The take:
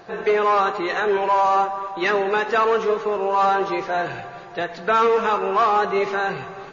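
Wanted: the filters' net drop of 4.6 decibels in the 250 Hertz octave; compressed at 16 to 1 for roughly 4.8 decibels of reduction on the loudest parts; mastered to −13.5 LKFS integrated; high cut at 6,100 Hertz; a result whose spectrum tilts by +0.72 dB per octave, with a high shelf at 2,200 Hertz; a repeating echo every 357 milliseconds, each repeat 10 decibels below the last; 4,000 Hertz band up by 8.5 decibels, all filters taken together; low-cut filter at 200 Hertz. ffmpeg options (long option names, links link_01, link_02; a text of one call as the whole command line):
ffmpeg -i in.wav -af "highpass=200,lowpass=6100,equalizer=frequency=250:width_type=o:gain=-7.5,highshelf=frequency=2200:gain=4.5,equalizer=frequency=4000:width_type=o:gain=7,acompressor=threshold=-18dB:ratio=16,aecho=1:1:357|714|1071|1428:0.316|0.101|0.0324|0.0104,volume=9.5dB" out.wav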